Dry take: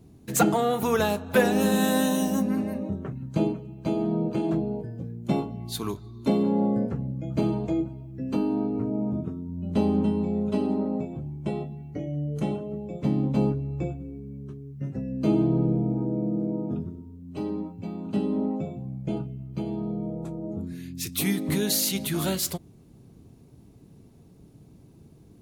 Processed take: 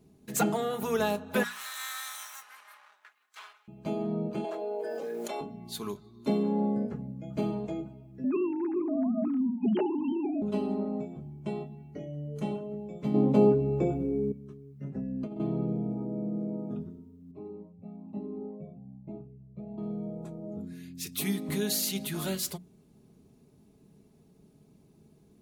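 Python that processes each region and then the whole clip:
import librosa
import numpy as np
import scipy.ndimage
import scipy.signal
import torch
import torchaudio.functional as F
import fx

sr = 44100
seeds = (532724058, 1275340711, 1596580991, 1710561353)

y = fx.chain(x, sr, fx.lower_of_two(delay_ms=0.52),
    fx.highpass(hz=1200.0, slope=24), at=(1.43, 3.68))
y = fx.chain(y, sr, fx.highpass(hz=460.0, slope=24),
    fx.env_flatten(amount_pct=100), at=(4.44, 5.41))
y = fx.chain(y, sr, fx.sine_speech(),
    fx.env_flatten(amount_pct=100), at=(8.24, 10.42))
y = fx.chain(y, sr, fx.peak_eq(hz=460.0, db=11.0, octaves=1.9),
    fx.env_flatten(amount_pct=50), at=(13.14, 14.32))
y = fx.chain(y, sr, fx.high_shelf(hz=2700.0, db=-12.0),
    fx.over_compress(threshold_db=-26.0, ratio=-0.5), at=(14.84, 15.4))
y = fx.chain(y, sr, fx.moving_average(points=28),
    fx.comb_cascade(direction='rising', hz=1.1), at=(17.31, 19.78))
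y = fx.low_shelf(y, sr, hz=80.0, db=-7.5)
y = fx.hum_notches(y, sr, base_hz=60, count=4)
y = y + 0.45 * np.pad(y, (int(4.8 * sr / 1000.0), 0))[:len(y)]
y = y * 10.0 ** (-6.0 / 20.0)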